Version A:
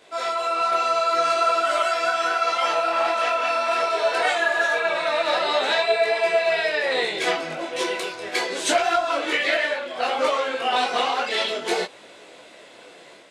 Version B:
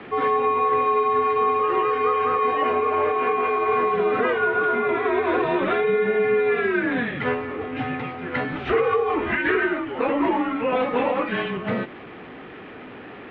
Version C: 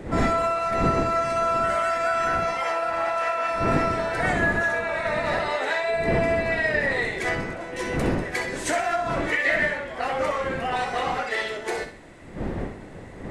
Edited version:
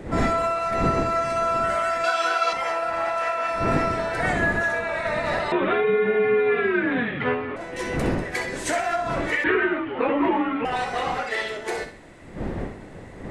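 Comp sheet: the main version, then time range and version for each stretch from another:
C
0:02.04–0:02.53: punch in from A
0:05.52–0:07.56: punch in from B
0:09.44–0:10.65: punch in from B

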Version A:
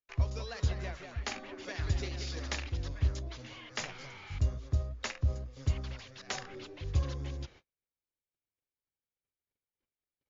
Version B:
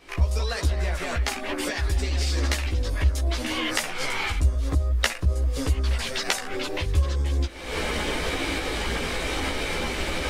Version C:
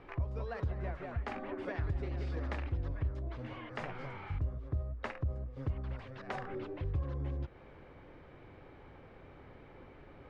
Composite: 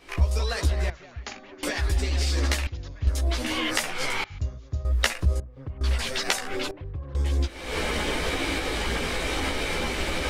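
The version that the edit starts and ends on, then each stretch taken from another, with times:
B
0:00.90–0:01.63: punch in from A
0:02.67–0:03.07: punch in from A
0:04.24–0:04.85: punch in from A
0:05.40–0:05.81: punch in from C
0:06.71–0:07.15: punch in from C

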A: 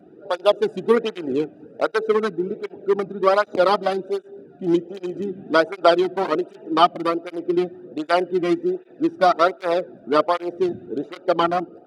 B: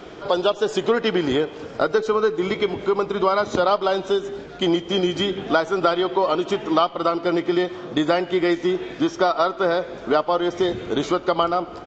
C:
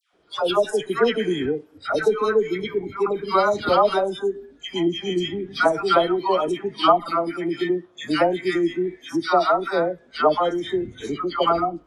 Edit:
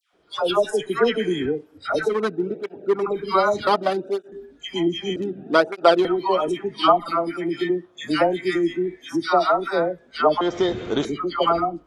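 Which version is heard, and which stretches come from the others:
C
0:02.12–0:03.01: punch in from A, crossfade 0.24 s
0:03.67–0:04.32: punch in from A
0:05.16–0:06.05: punch in from A
0:10.41–0:11.05: punch in from B

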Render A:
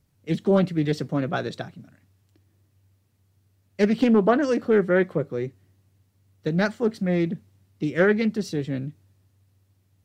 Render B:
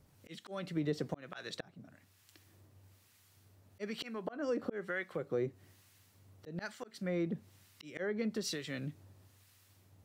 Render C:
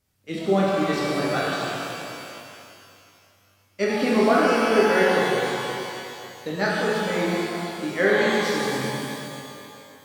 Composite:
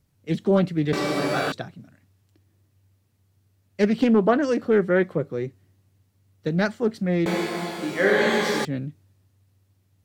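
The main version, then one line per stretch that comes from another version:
A
0:00.93–0:01.52: punch in from C
0:07.26–0:08.65: punch in from C
not used: B

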